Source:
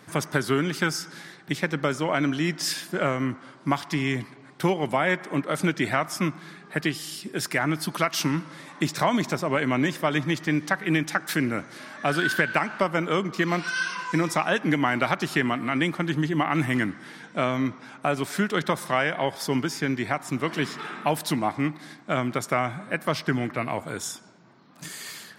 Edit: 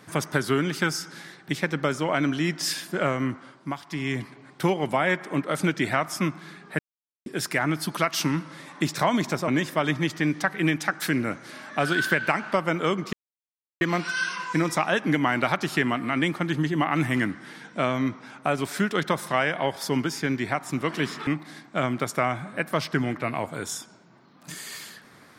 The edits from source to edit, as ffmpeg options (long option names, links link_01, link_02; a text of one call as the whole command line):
ffmpeg -i in.wav -filter_complex "[0:a]asplit=8[link_01][link_02][link_03][link_04][link_05][link_06][link_07][link_08];[link_01]atrim=end=3.76,asetpts=PTS-STARTPTS,afade=type=out:start_time=3.38:duration=0.38:silence=0.354813[link_09];[link_02]atrim=start=3.76:end=3.84,asetpts=PTS-STARTPTS,volume=-9dB[link_10];[link_03]atrim=start=3.84:end=6.79,asetpts=PTS-STARTPTS,afade=type=in:duration=0.38:silence=0.354813,afade=type=out:start_time=2.946:duration=0.004:curve=hsin[link_11];[link_04]atrim=start=6.79:end=7.26,asetpts=PTS-STARTPTS,volume=0[link_12];[link_05]atrim=start=7.26:end=9.482,asetpts=PTS-STARTPTS,afade=type=in:duration=0.004:curve=hsin[link_13];[link_06]atrim=start=9.748:end=13.4,asetpts=PTS-STARTPTS,afade=type=out:start_time=3.648:duration=0.004:curve=hsin,apad=pad_dur=0.68[link_14];[link_07]atrim=start=13.4:end=20.862,asetpts=PTS-STARTPTS,afade=type=in:duration=0.004:curve=hsin[link_15];[link_08]atrim=start=21.608[link_16];[link_09][link_10][link_11][link_12][link_13]concat=n=5:v=0:a=1[link_17];[link_14][link_15]concat=n=2:v=0:a=1[link_18];[link_17][link_18]acrossfade=duration=0.004:curve1=hsin:curve2=hsin[link_19];[link_19][link_16]acrossfade=duration=0.004:curve1=hsin:curve2=hsin" out.wav